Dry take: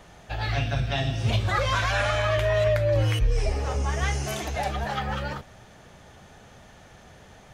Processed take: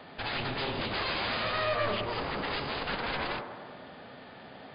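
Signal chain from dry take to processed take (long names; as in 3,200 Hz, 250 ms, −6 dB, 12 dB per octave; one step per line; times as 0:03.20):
high-pass filter 180 Hz 12 dB per octave
parametric band 260 Hz +8 dB 0.21 octaves
in parallel at +1.5 dB: downward compressor 6 to 1, threshold −34 dBFS, peak gain reduction 13 dB
on the sum: harmonic generator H 3 −16 dB, 5 −24 dB, 6 −12 dB, 7 −13 dB, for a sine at −11 dBFS
soft clipping −26 dBFS, distortion −5 dB
phase-vocoder stretch with locked phases 0.63×
linear-phase brick-wall low-pass 5,000 Hz
delay with a band-pass on its return 100 ms, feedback 65%, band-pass 650 Hz, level −6 dB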